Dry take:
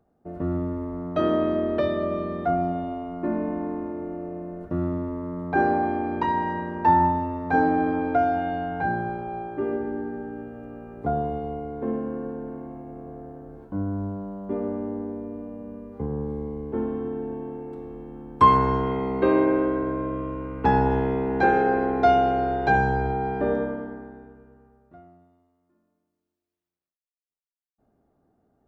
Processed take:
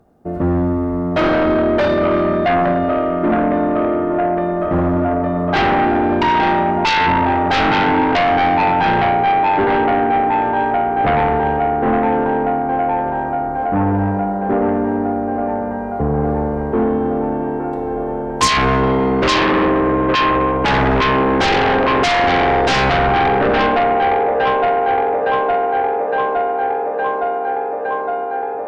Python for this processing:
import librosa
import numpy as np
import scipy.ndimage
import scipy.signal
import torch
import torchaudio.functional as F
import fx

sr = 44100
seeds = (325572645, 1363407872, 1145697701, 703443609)

p1 = fx.echo_wet_bandpass(x, sr, ms=863, feedback_pct=80, hz=930.0, wet_db=-6)
p2 = fx.fold_sine(p1, sr, drive_db=17, ceiling_db=-4.5)
p3 = p1 + (p2 * librosa.db_to_amplitude(-8.0))
y = p3 * librosa.db_to_amplitude(-1.5)